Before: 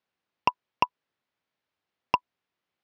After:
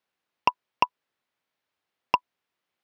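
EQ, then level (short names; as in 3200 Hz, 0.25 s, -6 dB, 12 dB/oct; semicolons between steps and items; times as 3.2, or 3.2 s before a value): low shelf 270 Hz -5.5 dB; +2.0 dB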